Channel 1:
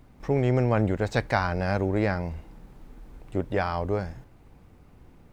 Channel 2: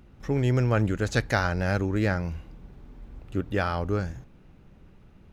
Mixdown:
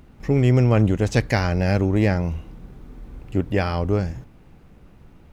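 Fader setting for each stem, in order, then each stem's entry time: 0.0 dB, +2.5 dB; 0.00 s, 0.00 s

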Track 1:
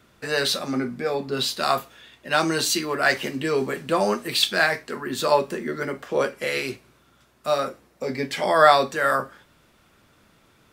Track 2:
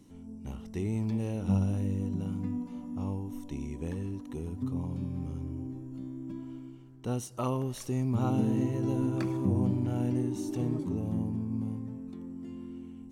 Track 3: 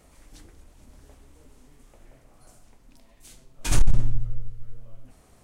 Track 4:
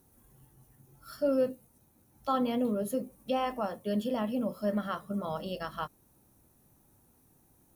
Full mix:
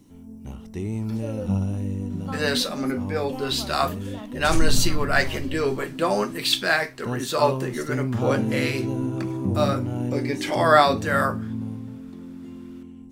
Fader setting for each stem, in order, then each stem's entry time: -1.0 dB, +3.0 dB, -4.0 dB, -7.5 dB; 2.10 s, 0.00 s, 0.80 s, 0.00 s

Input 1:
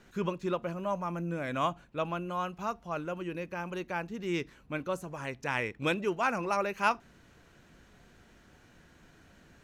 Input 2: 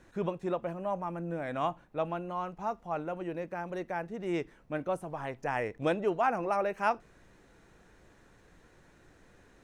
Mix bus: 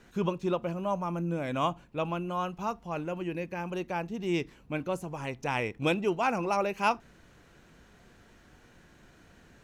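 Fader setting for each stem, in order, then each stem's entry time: +0.5 dB, -4.5 dB; 0.00 s, 0.00 s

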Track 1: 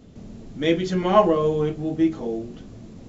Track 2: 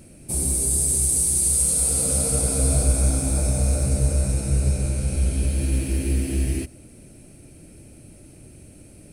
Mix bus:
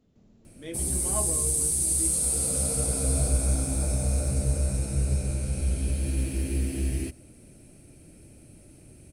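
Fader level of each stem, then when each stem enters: -18.5 dB, -5.0 dB; 0.00 s, 0.45 s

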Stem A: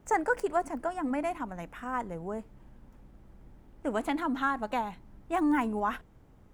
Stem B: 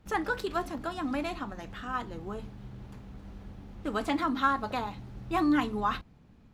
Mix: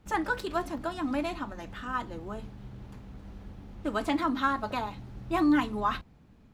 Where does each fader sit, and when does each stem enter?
-9.0 dB, 0.0 dB; 0.00 s, 0.00 s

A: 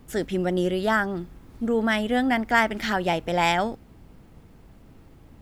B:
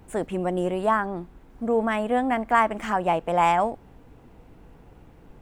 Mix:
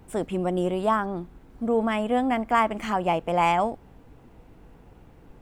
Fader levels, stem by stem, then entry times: -14.0 dB, -1.0 dB; 0.00 s, 0.00 s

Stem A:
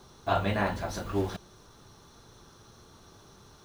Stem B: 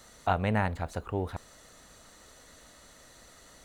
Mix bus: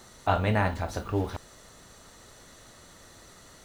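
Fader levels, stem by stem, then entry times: -3.5 dB, +1.5 dB; 0.00 s, 0.00 s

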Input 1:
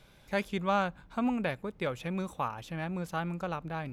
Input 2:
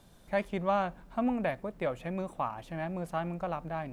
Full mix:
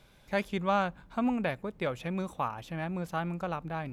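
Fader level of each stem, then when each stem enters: -1.5 dB, -11.0 dB; 0.00 s, 0.00 s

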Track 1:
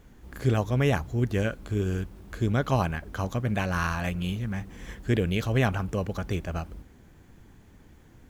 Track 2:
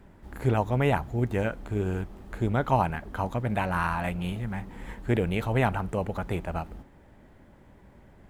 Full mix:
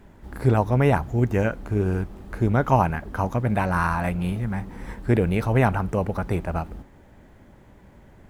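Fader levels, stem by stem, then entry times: -6.5 dB, +3.0 dB; 0.00 s, 0.00 s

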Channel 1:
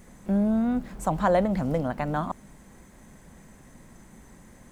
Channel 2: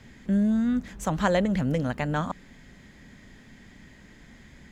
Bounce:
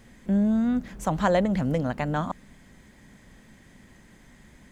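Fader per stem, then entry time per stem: -6.5 dB, -4.0 dB; 0.00 s, 0.00 s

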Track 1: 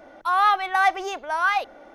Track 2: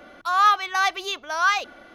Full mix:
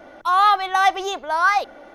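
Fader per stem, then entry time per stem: +3.0 dB, -6.0 dB; 0.00 s, 0.00 s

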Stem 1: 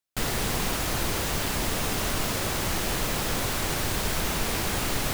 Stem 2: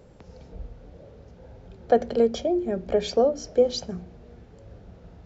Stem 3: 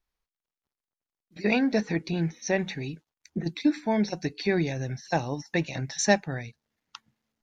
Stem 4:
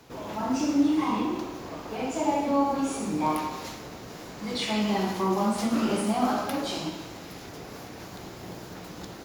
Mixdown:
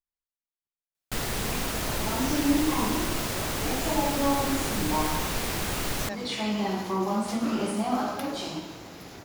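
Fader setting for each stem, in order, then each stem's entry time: -2.5 dB, mute, -16.5 dB, -2.0 dB; 0.95 s, mute, 0.00 s, 1.70 s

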